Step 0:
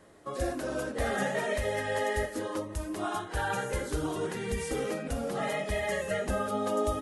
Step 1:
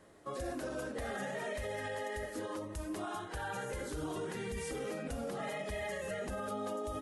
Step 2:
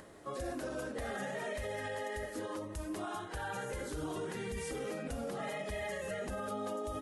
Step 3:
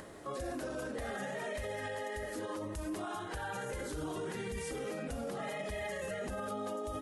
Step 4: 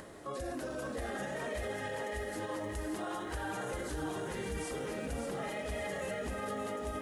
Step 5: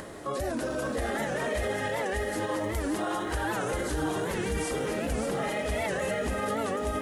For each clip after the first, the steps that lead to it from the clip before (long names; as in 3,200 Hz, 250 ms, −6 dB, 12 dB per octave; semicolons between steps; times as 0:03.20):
brickwall limiter −27.5 dBFS, peak gain reduction 9.5 dB; level −3.5 dB
upward compression, threshold −48 dBFS
brickwall limiter −36 dBFS, peak gain reduction 5 dB; level +4.5 dB
feedback echo at a low word length 573 ms, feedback 55%, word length 11 bits, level −6 dB
wow of a warped record 78 rpm, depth 160 cents; level +8 dB